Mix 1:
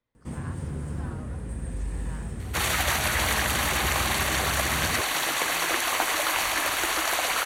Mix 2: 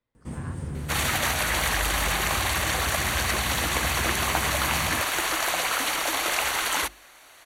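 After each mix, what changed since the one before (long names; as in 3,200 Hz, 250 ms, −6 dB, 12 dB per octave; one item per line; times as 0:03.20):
second sound: entry −1.65 s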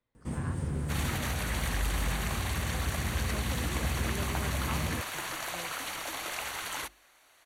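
second sound −11.0 dB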